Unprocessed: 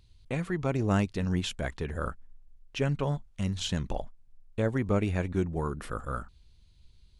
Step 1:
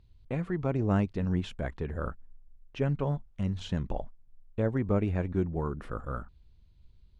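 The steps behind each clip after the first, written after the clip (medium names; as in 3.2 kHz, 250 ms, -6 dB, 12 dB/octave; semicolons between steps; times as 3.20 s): low-pass 1.2 kHz 6 dB/octave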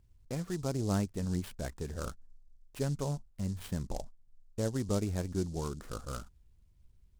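delay time shaken by noise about 5.9 kHz, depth 0.066 ms; trim -4.5 dB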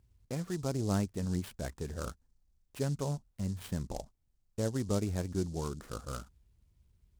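high-pass 40 Hz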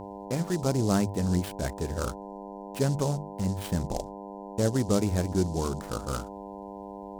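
mains buzz 100 Hz, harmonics 10, -47 dBFS -2 dB/octave; hum notches 50/100/150 Hz; trim +7.5 dB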